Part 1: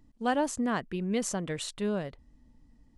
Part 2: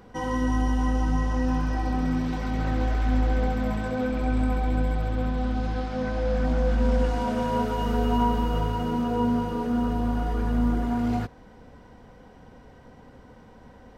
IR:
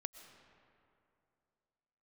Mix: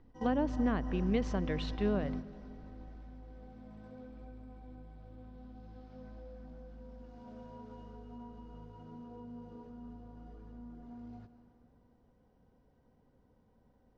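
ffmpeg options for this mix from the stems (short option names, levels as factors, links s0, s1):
-filter_complex "[0:a]lowpass=3300,volume=0.596,asplit=3[s0][s1][s2];[s1]volume=0.708[s3];[1:a]equalizer=f=2100:t=o:w=2.7:g=-9,acompressor=threshold=0.0355:ratio=3,volume=0.355,asplit=2[s4][s5];[s5]volume=0.473[s6];[s2]apad=whole_len=616131[s7];[s4][s7]sidechaingate=range=0.0224:threshold=0.00224:ratio=16:detection=peak[s8];[2:a]atrim=start_sample=2205[s9];[s3][s6]amix=inputs=2:normalize=0[s10];[s10][s9]afir=irnorm=-1:irlink=0[s11];[s0][s8][s11]amix=inputs=3:normalize=0,lowpass=f=5700:w=0.5412,lowpass=f=5700:w=1.3066,acrossover=split=490[s12][s13];[s13]acompressor=threshold=0.0158:ratio=6[s14];[s12][s14]amix=inputs=2:normalize=0"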